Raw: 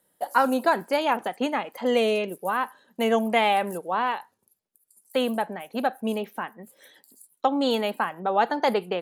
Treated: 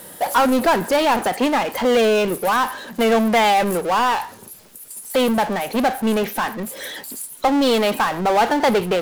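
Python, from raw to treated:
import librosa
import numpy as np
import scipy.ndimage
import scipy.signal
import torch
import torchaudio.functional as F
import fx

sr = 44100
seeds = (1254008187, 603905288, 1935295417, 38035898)

y = fx.power_curve(x, sr, exponent=0.5)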